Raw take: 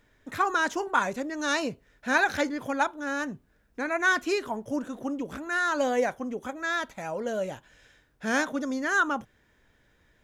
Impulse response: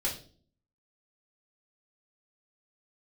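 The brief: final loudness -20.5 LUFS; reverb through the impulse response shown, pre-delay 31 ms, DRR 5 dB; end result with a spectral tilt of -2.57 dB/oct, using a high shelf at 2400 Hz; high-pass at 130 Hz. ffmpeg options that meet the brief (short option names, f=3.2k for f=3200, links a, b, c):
-filter_complex "[0:a]highpass=130,highshelf=f=2.4k:g=3.5,asplit=2[a][b];[1:a]atrim=start_sample=2205,adelay=31[c];[b][c]afir=irnorm=-1:irlink=0,volume=-10.5dB[d];[a][d]amix=inputs=2:normalize=0,volume=6dB"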